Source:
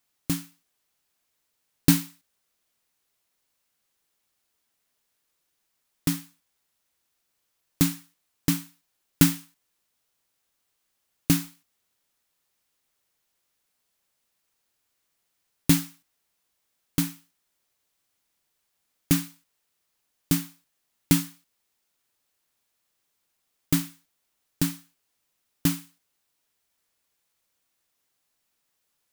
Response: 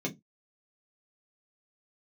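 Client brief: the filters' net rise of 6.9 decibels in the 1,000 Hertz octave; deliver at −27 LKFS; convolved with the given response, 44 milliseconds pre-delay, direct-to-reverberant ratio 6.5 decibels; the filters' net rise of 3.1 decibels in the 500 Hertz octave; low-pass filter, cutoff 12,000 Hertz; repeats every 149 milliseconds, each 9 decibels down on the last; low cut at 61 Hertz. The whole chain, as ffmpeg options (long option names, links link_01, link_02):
-filter_complex "[0:a]highpass=61,lowpass=12000,equalizer=frequency=500:width_type=o:gain=3,equalizer=frequency=1000:width_type=o:gain=8,aecho=1:1:149|298|447|596:0.355|0.124|0.0435|0.0152,asplit=2[link_01][link_02];[1:a]atrim=start_sample=2205,adelay=44[link_03];[link_02][link_03]afir=irnorm=-1:irlink=0,volume=-11dB[link_04];[link_01][link_04]amix=inputs=2:normalize=0,volume=-2.5dB"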